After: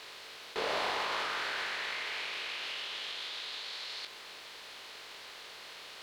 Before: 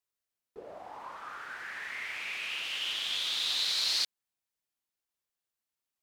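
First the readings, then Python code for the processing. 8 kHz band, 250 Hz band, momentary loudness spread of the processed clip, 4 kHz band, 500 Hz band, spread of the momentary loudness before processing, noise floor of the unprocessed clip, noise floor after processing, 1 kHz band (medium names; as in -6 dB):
-7.5 dB, no reading, 14 LU, -5.5 dB, +9.5 dB, 18 LU, under -85 dBFS, -49 dBFS, +7.0 dB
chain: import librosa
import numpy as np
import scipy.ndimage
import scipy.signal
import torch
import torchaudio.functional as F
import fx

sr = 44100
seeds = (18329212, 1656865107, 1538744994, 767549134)

y = fx.bin_compress(x, sr, power=0.4)
y = fx.bass_treble(y, sr, bass_db=-1, treble_db=-9)
y = fx.over_compress(y, sr, threshold_db=-39.0, ratio=-1.0)
y = fx.doubler(y, sr, ms=20.0, db=-5)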